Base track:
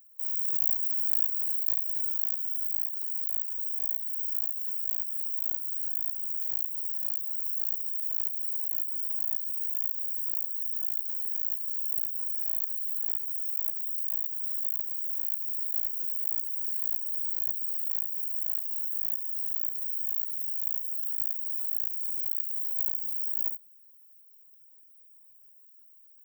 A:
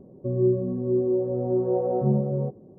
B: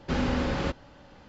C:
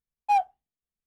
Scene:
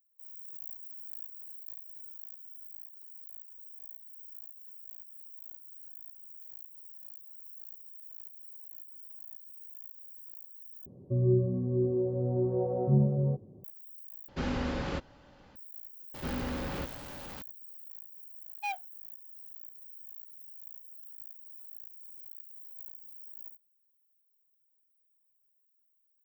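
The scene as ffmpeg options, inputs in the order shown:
-filter_complex "[2:a]asplit=2[s0][s1];[0:a]volume=0.141[s2];[1:a]equalizer=f=95:w=1:g=12[s3];[s1]aeval=exprs='val(0)+0.5*0.0282*sgn(val(0))':c=same[s4];[3:a]highshelf=f=1500:t=q:w=1.5:g=10.5[s5];[s2]asplit=3[s6][s7][s8];[s6]atrim=end=10.864[s9];[s3]atrim=end=2.78,asetpts=PTS-STARTPTS,volume=0.422[s10];[s7]atrim=start=13.636:end=14.284[s11];[s0]atrim=end=1.28,asetpts=PTS-STARTPTS,volume=0.531[s12];[s8]atrim=start=15.556[s13];[s4]atrim=end=1.28,asetpts=PTS-STARTPTS,volume=0.316,afade=t=in:d=0.004:c=hsin,afade=t=out:st=1.276:d=0.004:c=hsin,adelay=16140[s14];[s5]atrim=end=1.06,asetpts=PTS-STARTPTS,volume=0.224,afade=t=in:d=0.004:c=hsin,afade=t=out:st=1.056:d=0.004:c=hsin,adelay=18340[s15];[s9][s10]acrossfade=d=0.004:c1=hsin:c2=hsin[s16];[s16][s11]acrossfade=d=0.004:c1=hsin:c2=hsin[s17];[s17][s12]acrossfade=d=0.004:c1=hsin:c2=hsin[s18];[s18][s13]acrossfade=d=0.004:c1=hsin:c2=hsin[s19];[s19][s14][s15]amix=inputs=3:normalize=0"

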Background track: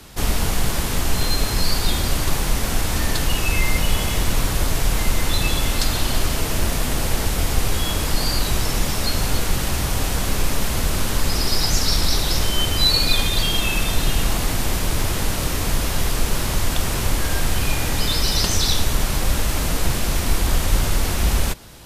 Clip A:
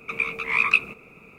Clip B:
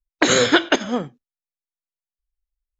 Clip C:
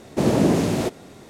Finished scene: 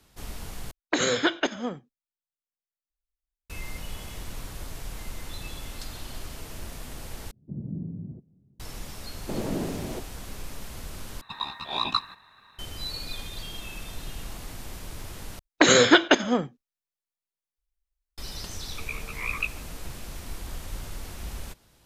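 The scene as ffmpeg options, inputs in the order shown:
-filter_complex "[2:a]asplit=2[s0][s1];[3:a]asplit=2[s2][s3];[1:a]asplit=2[s4][s5];[0:a]volume=0.126[s6];[s2]lowpass=f=160:t=q:w=2[s7];[s4]aeval=exprs='val(0)*sin(2*PI*1400*n/s)':c=same[s8];[s6]asplit=5[s9][s10][s11][s12][s13];[s9]atrim=end=0.714[s14];[s0]atrim=end=2.79,asetpts=PTS-STARTPTS,volume=0.376[s15];[s10]atrim=start=3.496:end=7.314[s16];[s7]atrim=end=1.29,asetpts=PTS-STARTPTS,volume=0.158[s17];[s11]atrim=start=8.596:end=11.214[s18];[s8]atrim=end=1.38,asetpts=PTS-STARTPTS,volume=0.631[s19];[s12]atrim=start=12.586:end=15.394[s20];[s1]atrim=end=2.79,asetpts=PTS-STARTPTS,volume=0.891[s21];[s13]atrim=start=18.176[s22];[s3]atrim=end=1.29,asetpts=PTS-STARTPTS,volume=0.237,afade=t=in:d=0.004:c=hsin,afade=t=out:st=1.286:d=0.004:c=hsin,adelay=9110[s23];[s5]atrim=end=1.38,asetpts=PTS-STARTPTS,volume=0.282,afade=t=in:d=0.004:c=hsin,afade=t=out:st=1.376:d=0.004:c=hsin,adelay=18690[s24];[s14][s15]acrossfade=d=0.004:c1=hsin:c2=hsin[s25];[s25][s16]acrossfade=d=0.004:c1=hsin:c2=hsin[s26];[s26][s17]acrossfade=d=0.004:c1=hsin:c2=hsin[s27];[s27][s18]acrossfade=d=0.004:c1=hsin:c2=hsin[s28];[s28][s19]acrossfade=d=0.004:c1=hsin:c2=hsin[s29];[s29][s20]acrossfade=d=0.004:c1=hsin:c2=hsin[s30];[s30][s21]acrossfade=d=0.004:c1=hsin:c2=hsin[s31];[s31][s22]acrossfade=d=0.004:c1=hsin:c2=hsin[s32];[s32][s23][s24]amix=inputs=3:normalize=0"

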